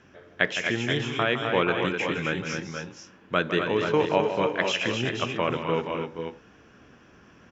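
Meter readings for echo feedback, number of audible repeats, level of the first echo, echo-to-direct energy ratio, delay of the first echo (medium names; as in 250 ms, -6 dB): no regular repeats, 3, -10.0 dB, -2.5 dB, 160 ms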